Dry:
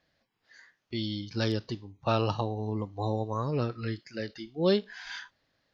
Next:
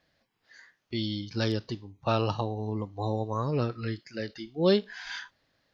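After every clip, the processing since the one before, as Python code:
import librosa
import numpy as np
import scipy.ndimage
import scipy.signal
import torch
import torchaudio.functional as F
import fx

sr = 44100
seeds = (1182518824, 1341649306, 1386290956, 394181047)

y = fx.rider(x, sr, range_db=4, speed_s=2.0)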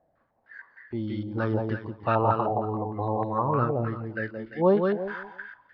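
y = fx.echo_feedback(x, sr, ms=171, feedback_pct=29, wet_db=-4.0)
y = fx.filter_held_lowpass(y, sr, hz=6.5, low_hz=720.0, high_hz=1800.0)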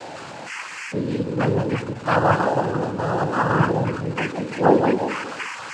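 y = x + 0.5 * 10.0 ** (-34.0 / 20.0) * np.sign(x)
y = fx.noise_vocoder(y, sr, seeds[0], bands=8)
y = y * 10.0 ** (5.0 / 20.0)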